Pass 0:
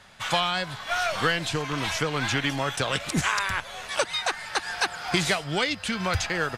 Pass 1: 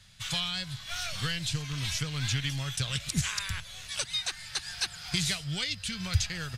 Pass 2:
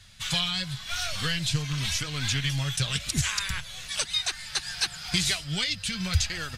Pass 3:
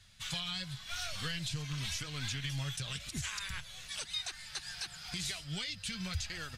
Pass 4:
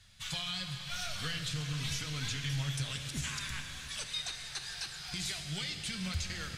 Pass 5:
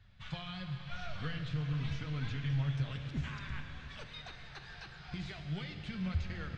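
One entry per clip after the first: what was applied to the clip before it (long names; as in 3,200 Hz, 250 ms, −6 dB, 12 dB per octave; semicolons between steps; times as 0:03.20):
drawn EQ curve 130 Hz 0 dB, 300 Hz −19 dB, 870 Hz −22 dB, 4,100 Hz −3 dB; level +2.5 dB
flanger 0.94 Hz, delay 2.6 ms, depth 4.1 ms, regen −40%; level +8 dB
brickwall limiter −18.5 dBFS, peak gain reduction 8.5 dB; level −8.5 dB
convolution reverb RT60 3.8 s, pre-delay 6 ms, DRR 4.5 dB
head-to-tape spacing loss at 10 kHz 41 dB; level +3 dB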